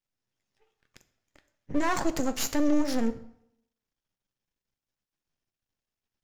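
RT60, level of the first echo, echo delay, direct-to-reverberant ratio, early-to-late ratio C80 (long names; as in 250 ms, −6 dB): 0.75 s, no echo audible, no echo audible, 10.5 dB, 17.5 dB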